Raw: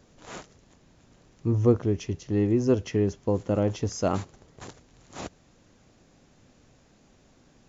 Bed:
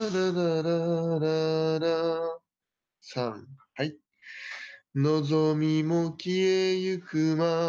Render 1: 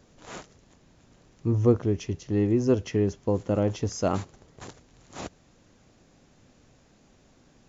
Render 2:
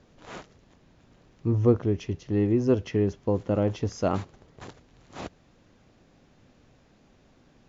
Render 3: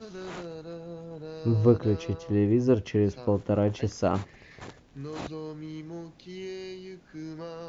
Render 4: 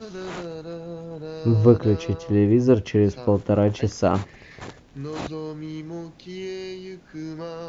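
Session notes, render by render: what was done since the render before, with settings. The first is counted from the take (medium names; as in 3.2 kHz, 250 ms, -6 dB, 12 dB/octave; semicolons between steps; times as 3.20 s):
no audible change
low-pass 4.6 kHz 12 dB/octave
add bed -14 dB
trim +5.5 dB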